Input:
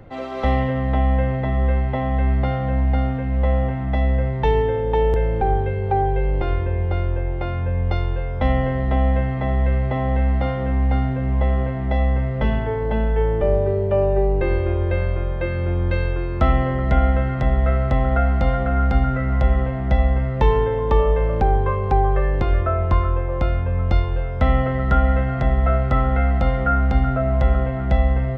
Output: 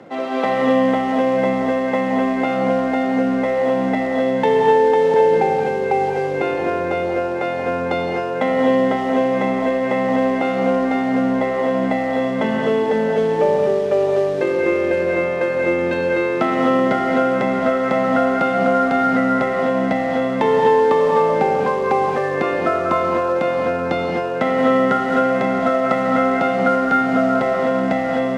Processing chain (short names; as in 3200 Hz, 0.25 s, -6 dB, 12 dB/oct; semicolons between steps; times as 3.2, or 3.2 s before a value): HPF 200 Hz 24 dB/oct; compressor 2:1, threshold -24 dBFS, peak gain reduction 5 dB; in parallel at -10 dB: companded quantiser 4-bit; on the sum: air absorption 74 m; non-linear reverb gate 0.28 s rising, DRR 0 dB; gain +4 dB